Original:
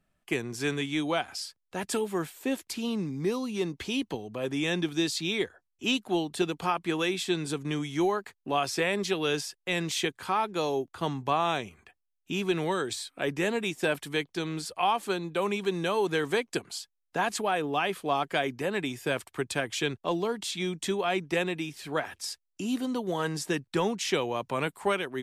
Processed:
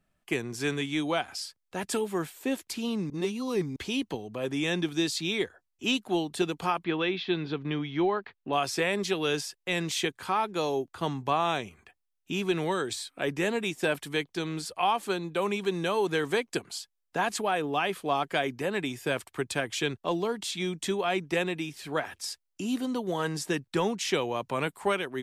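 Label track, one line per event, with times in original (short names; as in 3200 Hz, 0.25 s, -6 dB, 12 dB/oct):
3.100000	3.760000	reverse
6.840000	8.530000	inverse Chebyshev low-pass stop band from 7500 Hz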